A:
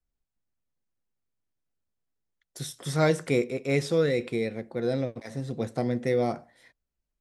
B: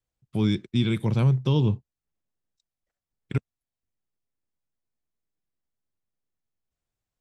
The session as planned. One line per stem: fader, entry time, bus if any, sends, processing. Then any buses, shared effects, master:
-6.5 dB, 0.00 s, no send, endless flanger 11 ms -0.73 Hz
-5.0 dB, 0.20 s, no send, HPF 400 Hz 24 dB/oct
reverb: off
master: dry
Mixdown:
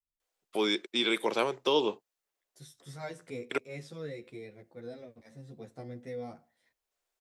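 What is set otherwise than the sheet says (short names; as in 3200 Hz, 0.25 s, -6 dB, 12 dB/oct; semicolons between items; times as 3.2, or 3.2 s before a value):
stem A -6.5 dB -> -13.0 dB; stem B -5.0 dB -> +5.5 dB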